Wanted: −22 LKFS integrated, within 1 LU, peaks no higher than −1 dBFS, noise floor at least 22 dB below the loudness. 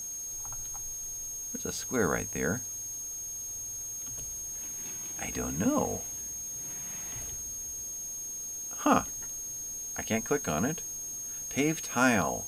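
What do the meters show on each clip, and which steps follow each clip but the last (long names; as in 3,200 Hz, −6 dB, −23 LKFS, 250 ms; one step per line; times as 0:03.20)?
interfering tone 6,500 Hz; level of the tone −36 dBFS; background noise floor −39 dBFS; target noise floor −54 dBFS; integrated loudness −32.0 LKFS; sample peak −11.0 dBFS; target loudness −22.0 LKFS
→ notch filter 6,500 Hz, Q 30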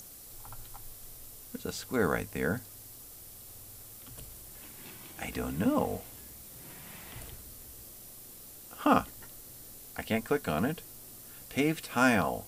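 interfering tone none found; background noise floor −49 dBFS; target noise floor −54 dBFS
→ broadband denoise 6 dB, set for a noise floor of −49 dBFS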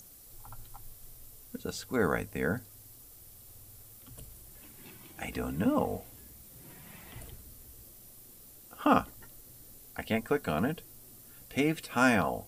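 background noise floor −53 dBFS; integrated loudness −31.0 LKFS; sample peak −11.5 dBFS; target loudness −22.0 LKFS
→ level +9 dB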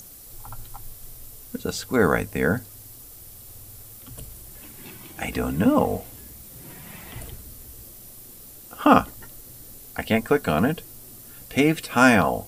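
integrated loudness −22.0 LKFS; sample peak −2.5 dBFS; background noise floor −44 dBFS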